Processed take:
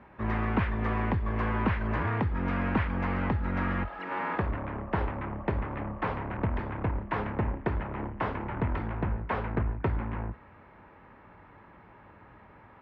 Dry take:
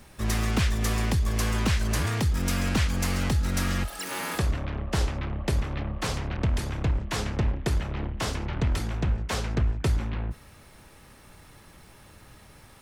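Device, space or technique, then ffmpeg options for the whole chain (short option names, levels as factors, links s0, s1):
bass cabinet: -af "highpass=60,equalizer=f=71:t=q:w=4:g=-9,equalizer=f=140:t=q:w=4:g=-7,equalizer=f=950:t=q:w=4:g=6,lowpass=f=2100:w=0.5412,lowpass=f=2100:w=1.3066"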